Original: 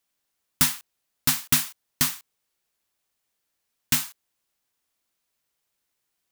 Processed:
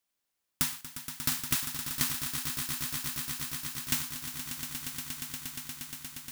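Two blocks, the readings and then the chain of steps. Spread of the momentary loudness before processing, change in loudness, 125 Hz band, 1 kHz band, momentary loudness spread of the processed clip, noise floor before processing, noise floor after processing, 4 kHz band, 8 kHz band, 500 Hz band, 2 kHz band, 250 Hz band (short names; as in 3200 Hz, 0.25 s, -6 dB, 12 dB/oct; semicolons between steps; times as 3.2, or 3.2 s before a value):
15 LU, -9.5 dB, -4.0 dB, -5.0 dB, 10 LU, -79 dBFS, -83 dBFS, -4.5 dB, -4.5 dB, -2.0 dB, -4.5 dB, -5.0 dB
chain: compressor 3:1, threshold -21 dBFS, peak gain reduction 5.5 dB; on a send: swelling echo 0.118 s, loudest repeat 8, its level -10 dB; on the sum: gain -5 dB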